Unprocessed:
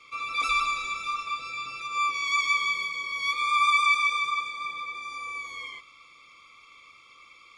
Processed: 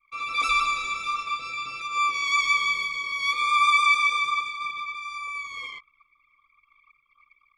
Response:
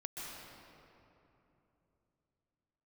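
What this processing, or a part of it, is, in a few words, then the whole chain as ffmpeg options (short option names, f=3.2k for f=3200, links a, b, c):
voice memo with heavy noise removal: -filter_complex "[0:a]asplit=3[a][b][c];[a]afade=t=out:st=2.41:d=0.02[d];[b]asubboost=boost=2.5:cutoff=140,afade=t=in:st=2.41:d=0.02,afade=t=out:st=2.97:d=0.02[e];[c]afade=t=in:st=2.97:d=0.02[f];[d][e][f]amix=inputs=3:normalize=0,anlmdn=0.0631,dynaudnorm=f=110:g=3:m=6.5dB,volume=-4dB"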